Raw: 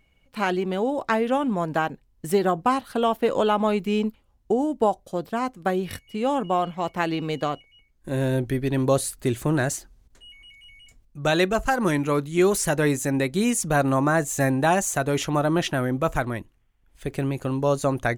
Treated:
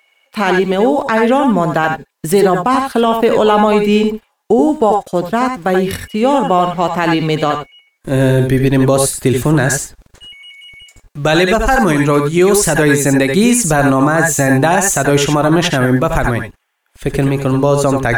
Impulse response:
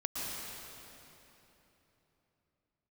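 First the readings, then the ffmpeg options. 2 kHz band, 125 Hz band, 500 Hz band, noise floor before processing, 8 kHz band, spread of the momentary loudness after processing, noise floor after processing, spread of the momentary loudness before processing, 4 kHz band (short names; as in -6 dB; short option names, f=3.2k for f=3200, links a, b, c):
+11.5 dB, +11.5 dB, +11.0 dB, -63 dBFS, +12.5 dB, 7 LU, -63 dBFS, 8 LU, +11.5 dB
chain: -filter_complex "[0:a]acrossover=split=530[a][b];[a]aeval=exprs='val(0)*gte(abs(val(0)),0.00355)':c=same[c];[c][b]amix=inputs=2:normalize=0[d];[1:a]atrim=start_sample=2205,afade=t=out:st=0.17:d=0.01,atrim=end_sample=7938,asetrate=61740,aresample=44100[e];[d][e]afir=irnorm=-1:irlink=0,alimiter=level_in=18dB:limit=-1dB:release=50:level=0:latency=1,volume=-1dB"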